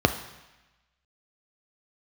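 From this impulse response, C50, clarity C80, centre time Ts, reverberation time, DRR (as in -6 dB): 11.5 dB, 14.0 dB, 11 ms, 1.0 s, 7.0 dB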